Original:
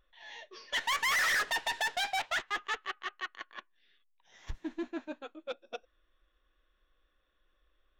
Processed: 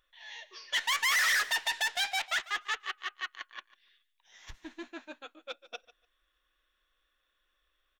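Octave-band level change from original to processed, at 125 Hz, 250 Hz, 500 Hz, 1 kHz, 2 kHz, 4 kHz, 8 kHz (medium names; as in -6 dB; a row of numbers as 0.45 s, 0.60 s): no reading, -7.5 dB, -5.5 dB, -1.5 dB, +2.0 dB, +3.5 dB, +4.5 dB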